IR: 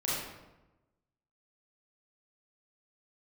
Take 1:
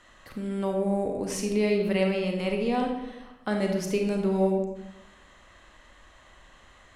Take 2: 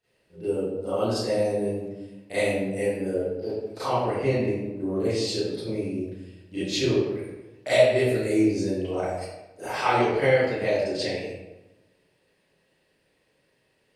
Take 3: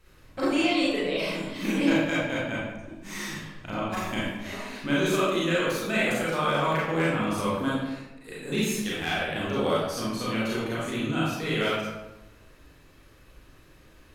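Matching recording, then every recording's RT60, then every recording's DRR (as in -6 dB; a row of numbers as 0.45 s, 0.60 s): 3; 1.0 s, 1.0 s, 1.0 s; 2.0 dB, -15.5 dB, -8.0 dB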